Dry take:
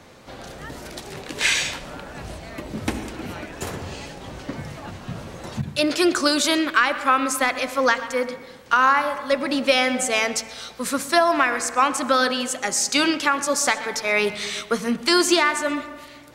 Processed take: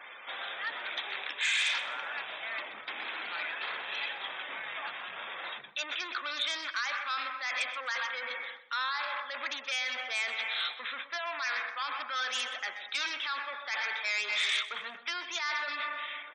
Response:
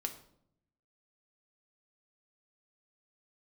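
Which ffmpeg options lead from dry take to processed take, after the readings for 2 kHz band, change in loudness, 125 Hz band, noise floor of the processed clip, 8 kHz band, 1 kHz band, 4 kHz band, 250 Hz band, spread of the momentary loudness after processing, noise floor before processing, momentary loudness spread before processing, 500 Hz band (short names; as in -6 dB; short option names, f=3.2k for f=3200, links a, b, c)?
-8.0 dB, -12.5 dB, under -35 dB, -48 dBFS, -19.0 dB, -14.5 dB, -7.5 dB, -33.5 dB, 8 LU, -43 dBFS, 17 LU, -23.0 dB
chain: -filter_complex "[0:a]areverse,acompressor=threshold=-27dB:ratio=12,areverse,aresample=8000,aresample=44100,alimiter=level_in=1.5dB:limit=-24dB:level=0:latency=1:release=23,volume=-1.5dB,aeval=exprs='0.0562*sin(PI/2*1.58*val(0)/0.0562)':c=same,afftfilt=real='re*gte(hypot(re,im),0.00708)':imag='im*gte(hypot(re,im),0.00708)':win_size=1024:overlap=0.75,highshelf=f=2.4k:g=9.5,asplit=2[a][b];[b]aecho=0:1:127|254|381:0.141|0.048|0.0163[c];[a][c]amix=inputs=2:normalize=0,acontrast=38,highpass=1.2k,bandreject=f=2.9k:w=9.8,volume=-8.5dB"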